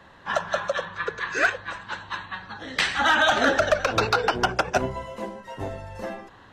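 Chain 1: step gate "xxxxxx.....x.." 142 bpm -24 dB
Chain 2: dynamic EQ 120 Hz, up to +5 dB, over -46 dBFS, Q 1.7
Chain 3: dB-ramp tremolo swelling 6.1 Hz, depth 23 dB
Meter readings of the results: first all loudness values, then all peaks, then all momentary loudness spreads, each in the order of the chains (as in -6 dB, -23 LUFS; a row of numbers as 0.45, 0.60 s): -26.0, -24.5, -32.0 LUFS; -12.5, -11.0, -12.5 dBFS; 21, 16, 18 LU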